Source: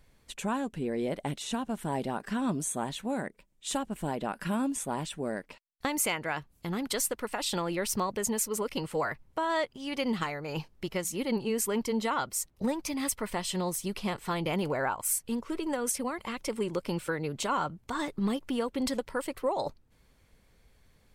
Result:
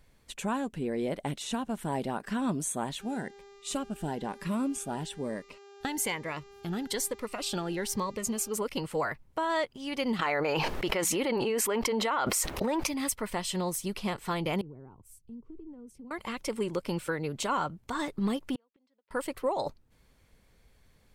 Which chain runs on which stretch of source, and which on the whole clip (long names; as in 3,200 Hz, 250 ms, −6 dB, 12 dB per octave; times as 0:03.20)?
0:03.00–0:08.51: high-shelf EQ 8,800 Hz −4.5 dB + hum with harmonics 400 Hz, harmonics 19, −51 dBFS −7 dB per octave + phaser whose notches keep moving one way rising 1.1 Hz
0:10.19–0:12.87: bass and treble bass −15 dB, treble −10 dB + envelope flattener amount 100%
0:14.61–0:16.11: drawn EQ curve 130 Hz 0 dB, 410 Hz −6 dB, 600 Hz −24 dB, 940 Hz −21 dB, 1,600 Hz −30 dB, 2,900 Hz −26 dB, 13,000 Hz −30 dB + downward compressor 2.5 to 1, threshold −46 dBFS + multiband upward and downward expander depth 70%
0:18.55–0:19.11: band-pass filter 230–4,200 Hz + gate with flip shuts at −28 dBFS, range −41 dB
whole clip: no processing